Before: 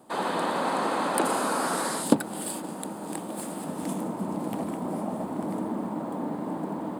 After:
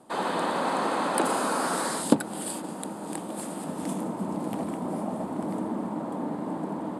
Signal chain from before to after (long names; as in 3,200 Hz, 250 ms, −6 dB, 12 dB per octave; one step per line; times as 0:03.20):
low-pass filter 12,000 Hz 24 dB per octave